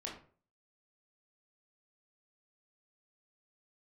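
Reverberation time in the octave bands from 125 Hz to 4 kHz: 0.50, 0.45, 0.50, 0.40, 0.35, 0.25 seconds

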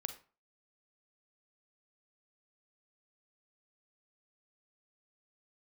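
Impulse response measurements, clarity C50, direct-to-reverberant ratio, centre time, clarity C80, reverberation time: 11.0 dB, 8.5 dB, 9 ms, 16.5 dB, 0.40 s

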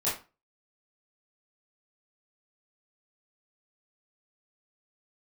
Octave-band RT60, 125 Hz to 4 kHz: 0.35, 0.35, 0.30, 0.30, 0.30, 0.25 seconds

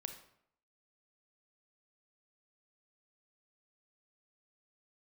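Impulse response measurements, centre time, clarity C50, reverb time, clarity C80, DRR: 15 ms, 8.5 dB, 0.70 s, 12.0 dB, 6.5 dB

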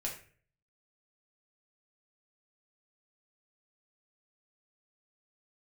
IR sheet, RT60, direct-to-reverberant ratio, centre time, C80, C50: 0.45 s, −2.5 dB, 24 ms, 11.5 dB, 7.5 dB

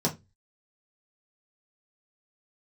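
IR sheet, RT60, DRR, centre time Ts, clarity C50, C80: 0.20 s, −3.5 dB, 12 ms, 16.0 dB, 25.0 dB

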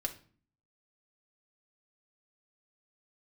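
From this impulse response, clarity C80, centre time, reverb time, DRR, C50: 18.5 dB, 8 ms, 0.45 s, 0.5 dB, 13.0 dB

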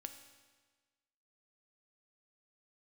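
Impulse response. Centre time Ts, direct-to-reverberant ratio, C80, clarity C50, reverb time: 18 ms, 6.5 dB, 10.5 dB, 9.0 dB, 1.4 s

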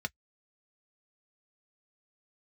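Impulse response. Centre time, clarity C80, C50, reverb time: 2 ms, 60.0 dB, 47.0 dB, non-exponential decay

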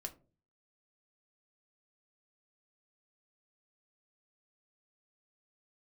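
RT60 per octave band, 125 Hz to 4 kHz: 0.65, 0.55, 0.45, 0.30, 0.20, 0.15 seconds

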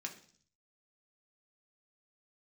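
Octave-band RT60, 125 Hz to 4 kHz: 0.90, 0.70, 0.55, 0.50, 0.50, 0.70 seconds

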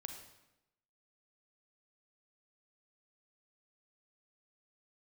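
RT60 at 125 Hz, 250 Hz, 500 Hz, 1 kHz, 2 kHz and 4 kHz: 0.95, 1.0, 0.95, 0.90, 0.85, 0.75 seconds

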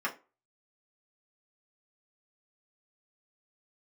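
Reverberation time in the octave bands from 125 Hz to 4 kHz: 0.25, 0.30, 0.30, 0.30, 0.25, 0.20 seconds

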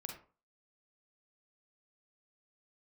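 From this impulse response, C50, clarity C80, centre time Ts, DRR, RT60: 5.5 dB, 11.0 dB, 25 ms, 1.5 dB, 0.40 s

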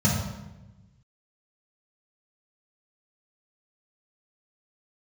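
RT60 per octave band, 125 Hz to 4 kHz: 1.7, 1.5, 1.1, 0.95, 0.90, 0.75 seconds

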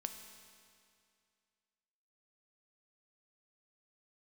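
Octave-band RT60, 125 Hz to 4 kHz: 2.3, 2.3, 2.3, 2.3, 2.3, 2.2 seconds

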